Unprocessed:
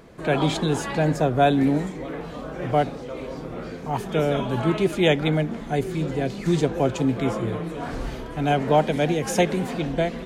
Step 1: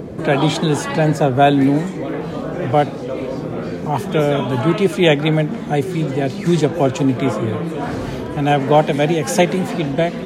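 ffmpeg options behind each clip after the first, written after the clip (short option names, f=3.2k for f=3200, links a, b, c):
-filter_complex "[0:a]highpass=f=71:w=0.5412,highpass=f=71:w=1.3066,acrossover=split=600|3400[a][b][c];[a]acompressor=mode=upward:threshold=-24dB:ratio=2.5[d];[d][b][c]amix=inputs=3:normalize=0,volume=6dB"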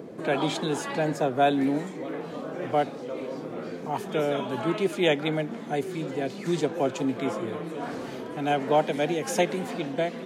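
-af "highpass=220,volume=-9dB"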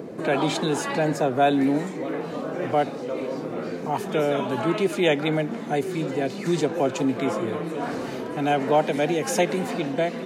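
-filter_complex "[0:a]bandreject=f=3.3k:w=17,asplit=2[a][b];[b]alimiter=limit=-21.5dB:level=0:latency=1:release=59,volume=-2.5dB[c];[a][c]amix=inputs=2:normalize=0"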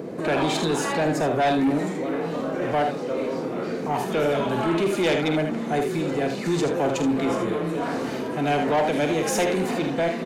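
-af "aecho=1:1:48|78:0.376|0.422,asoftclip=type=tanh:threshold=-18.5dB,volume=2dB"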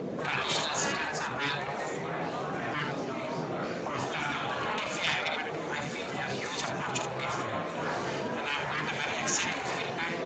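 -af "equalizer=f=350:t=o:w=0.56:g=-4,afftfilt=real='re*lt(hypot(re,im),0.178)':imag='im*lt(hypot(re,im),0.178)':win_size=1024:overlap=0.75" -ar 16000 -c:a libspeex -b:a 17k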